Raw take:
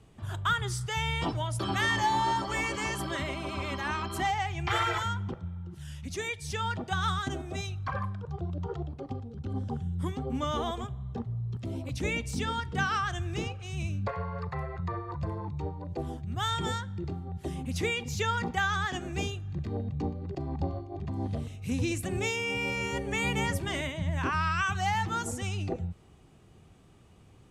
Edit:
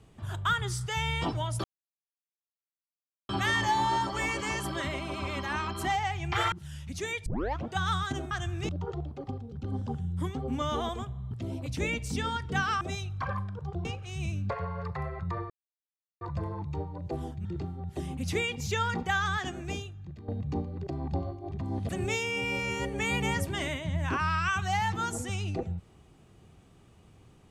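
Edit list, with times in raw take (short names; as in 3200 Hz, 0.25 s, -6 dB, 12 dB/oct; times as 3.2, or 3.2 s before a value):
1.64 insert silence 1.65 s
4.87–5.68 cut
6.42 tape start 0.42 s
7.47–8.51 swap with 13.04–13.42
11.13–11.54 cut
15.07 insert silence 0.71 s
16.31–16.93 cut
18.84–19.76 fade out, to -13.5 dB
21.37–22.02 cut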